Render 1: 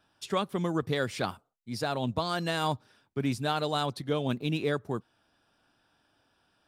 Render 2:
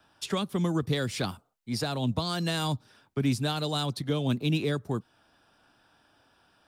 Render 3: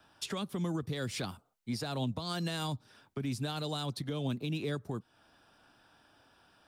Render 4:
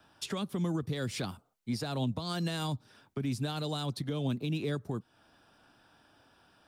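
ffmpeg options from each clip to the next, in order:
ffmpeg -i in.wav -filter_complex "[0:a]acrossover=split=360|1300|1800[link_01][link_02][link_03][link_04];[link_02]crystalizer=i=7:c=0[link_05];[link_01][link_05][link_03][link_04]amix=inputs=4:normalize=0,acrossover=split=300|3000[link_06][link_07][link_08];[link_07]acompressor=threshold=-41dB:ratio=3[link_09];[link_06][link_09][link_08]amix=inputs=3:normalize=0,volume=5dB" out.wav
ffmpeg -i in.wav -af "alimiter=level_in=2.5dB:limit=-24dB:level=0:latency=1:release=295,volume=-2.5dB" out.wav
ffmpeg -i in.wav -af "equalizer=frequency=180:width=0.41:gain=2.5" out.wav

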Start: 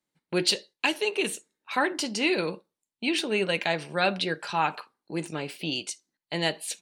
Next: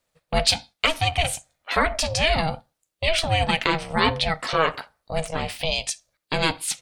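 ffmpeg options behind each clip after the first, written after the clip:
ffmpeg -i in.wav -filter_complex "[0:a]asplit=2[link_01][link_02];[link_02]acompressor=threshold=-35dB:ratio=6,volume=3dB[link_03];[link_01][link_03]amix=inputs=2:normalize=0,aeval=exprs='val(0)*sin(2*PI*320*n/s)':channel_layout=same,volume=5dB" out.wav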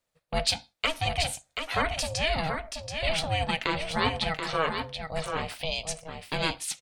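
ffmpeg -i in.wav -af "aecho=1:1:731:0.473,volume=-6.5dB" out.wav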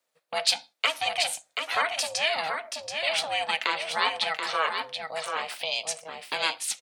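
ffmpeg -i in.wav -filter_complex "[0:a]highpass=340,acrossover=split=600|4400[link_01][link_02][link_03];[link_01]acompressor=threshold=-48dB:ratio=6[link_04];[link_04][link_02][link_03]amix=inputs=3:normalize=0,volume=3dB" out.wav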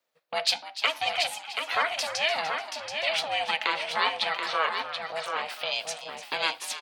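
ffmpeg -i in.wav -filter_complex "[0:a]equalizer=frequency=8900:width_type=o:width=0.82:gain=-8.5,asplit=5[link_01][link_02][link_03][link_04][link_05];[link_02]adelay=297,afreqshift=100,volume=-13dB[link_06];[link_03]adelay=594,afreqshift=200,volume=-21.2dB[link_07];[link_04]adelay=891,afreqshift=300,volume=-29.4dB[link_08];[link_05]adelay=1188,afreqshift=400,volume=-37.5dB[link_09];[link_01][link_06][link_07][link_08][link_09]amix=inputs=5:normalize=0" out.wav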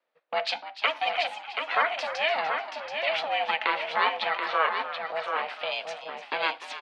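ffmpeg -i in.wav -af "highpass=240,lowpass=2500,volume=2.5dB" out.wav

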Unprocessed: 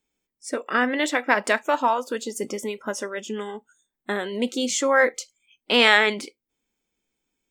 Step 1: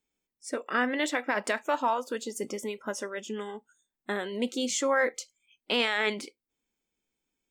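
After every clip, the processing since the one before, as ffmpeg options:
ffmpeg -i in.wav -af "alimiter=limit=-11.5dB:level=0:latency=1:release=29,volume=-5dB" out.wav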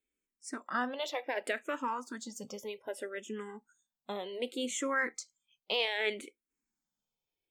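ffmpeg -i in.wav -filter_complex "[0:a]asplit=2[link_01][link_02];[link_02]afreqshift=-0.65[link_03];[link_01][link_03]amix=inputs=2:normalize=1,volume=-3dB" out.wav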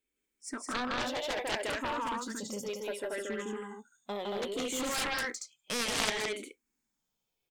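ffmpeg -i in.wav -af "aecho=1:1:160.3|230.3:0.794|0.708,aeval=exprs='0.188*(cos(1*acos(clip(val(0)/0.188,-1,1)))-cos(1*PI/2))+0.0596*(cos(3*acos(clip(val(0)/0.188,-1,1)))-cos(3*PI/2))+0.00596*(cos(4*acos(clip(val(0)/0.188,-1,1)))-cos(4*PI/2))+0.0211*(cos(7*acos(clip(val(0)/0.188,-1,1)))-cos(7*PI/2))':channel_layout=same,volume=5dB" out.wav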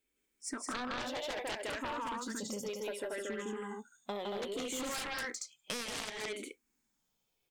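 ffmpeg -i in.wav -af "acompressor=threshold=-39dB:ratio=12,volume=3dB" out.wav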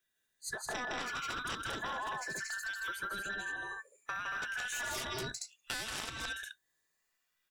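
ffmpeg -i in.wav -af "afftfilt=real='real(if(between(b,1,1012),(2*floor((b-1)/92)+1)*92-b,b),0)':imag='imag(if(between(b,1,1012),(2*floor((b-1)/92)+1)*92-b,b),0)*if(between(b,1,1012),-1,1)':win_size=2048:overlap=0.75" out.wav

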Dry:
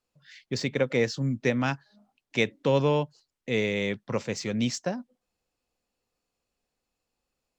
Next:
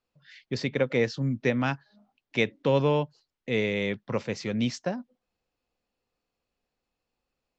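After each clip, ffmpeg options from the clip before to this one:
ffmpeg -i in.wav -af "lowpass=4700" out.wav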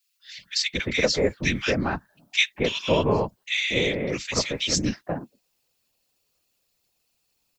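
ffmpeg -i in.wav -filter_complex "[0:a]afftfilt=real='hypot(re,im)*cos(2*PI*random(0))':imag='hypot(re,im)*sin(2*PI*random(1))':win_size=512:overlap=0.75,crystalizer=i=7:c=0,acrossover=split=1600[link_01][link_02];[link_01]adelay=230[link_03];[link_03][link_02]amix=inputs=2:normalize=0,volume=6.5dB" out.wav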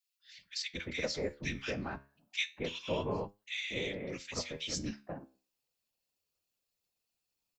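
ffmpeg -i in.wav -af "flanger=delay=9:depth=6.4:regen=76:speed=0.28:shape=triangular,volume=-9dB" out.wav

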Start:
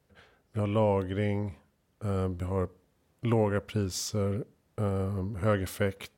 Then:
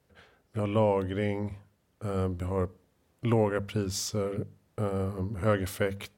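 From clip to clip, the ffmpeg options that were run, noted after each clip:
ffmpeg -i in.wav -af "bandreject=frequency=50:width_type=h:width=6,bandreject=frequency=100:width_type=h:width=6,bandreject=frequency=150:width_type=h:width=6,bandreject=frequency=200:width_type=h:width=6,volume=1dB" out.wav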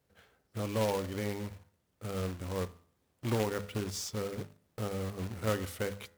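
ffmpeg -i in.wav -af "bandreject=frequency=84.29:width_type=h:width=4,bandreject=frequency=168.58:width_type=h:width=4,bandreject=frequency=252.87:width_type=h:width=4,bandreject=frequency=337.16:width_type=h:width=4,bandreject=frequency=421.45:width_type=h:width=4,bandreject=frequency=505.74:width_type=h:width=4,bandreject=frequency=590.03:width_type=h:width=4,bandreject=frequency=674.32:width_type=h:width=4,bandreject=frequency=758.61:width_type=h:width=4,bandreject=frequency=842.9:width_type=h:width=4,bandreject=frequency=927.19:width_type=h:width=4,bandreject=frequency=1011.48:width_type=h:width=4,bandreject=frequency=1095.77:width_type=h:width=4,bandreject=frequency=1180.06:width_type=h:width=4,bandreject=frequency=1264.35:width_type=h:width=4,bandreject=frequency=1348.64:width_type=h:width=4,bandreject=frequency=1432.93:width_type=h:width=4,bandreject=frequency=1517.22:width_type=h:width=4,bandreject=frequency=1601.51:width_type=h:width=4,bandreject=frequency=1685.8:width_type=h:width=4,bandreject=frequency=1770.09:width_type=h:width=4,bandreject=frequency=1854.38:width_type=h:width=4,bandreject=frequency=1938.67:width_type=h:width=4,bandreject=frequency=2022.96:width_type=h:width=4,bandreject=frequency=2107.25:width_type=h:width=4,acrusher=bits=2:mode=log:mix=0:aa=0.000001,volume=-6dB" out.wav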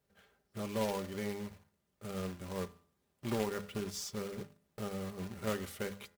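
ffmpeg -i in.wav -af "aecho=1:1:5:0.46,volume=-4dB" out.wav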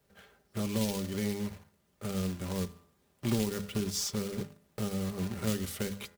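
ffmpeg -i in.wav -filter_complex "[0:a]acrossover=split=310|3000[link_01][link_02][link_03];[link_02]acompressor=threshold=-49dB:ratio=6[link_04];[link_01][link_04][link_03]amix=inputs=3:normalize=0,volume=8.5dB" out.wav

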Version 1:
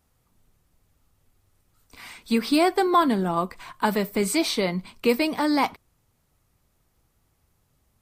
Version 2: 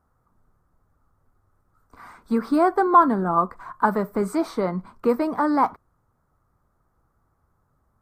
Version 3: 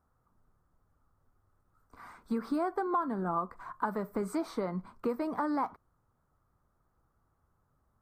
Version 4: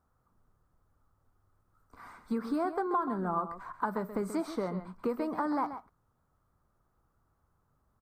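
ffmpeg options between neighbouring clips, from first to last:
ffmpeg -i in.wav -af "highshelf=frequency=1900:width_type=q:width=3:gain=-13" out.wav
ffmpeg -i in.wav -af "acompressor=threshold=-23dB:ratio=4,volume=-6dB" out.wav
ffmpeg -i in.wav -af "aecho=1:1:133:0.282" out.wav

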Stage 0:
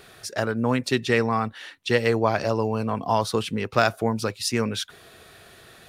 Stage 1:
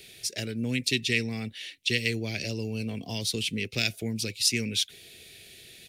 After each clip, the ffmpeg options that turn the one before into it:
ffmpeg -i in.wav -filter_complex "[0:a]firequalizer=gain_entry='entry(400,0);entry(1100,-23);entry(2200,8)':delay=0.05:min_phase=1,acrossover=split=330|1400|4300[link_01][link_02][link_03][link_04];[link_02]acompressor=threshold=-36dB:ratio=6[link_05];[link_01][link_05][link_03][link_04]amix=inputs=4:normalize=0,volume=-4.5dB" out.wav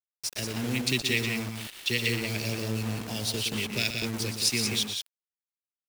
ffmpeg -i in.wav -filter_complex "[0:a]acrusher=bits=5:mix=0:aa=0.000001,asplit=2[link_01][link_02];[link_02]aecho=0:1:119|181:0.376|0.501[link_03];[link_01][link_03]amix=inputs=2:normalize=0,volume=-1.5dB" out.wav

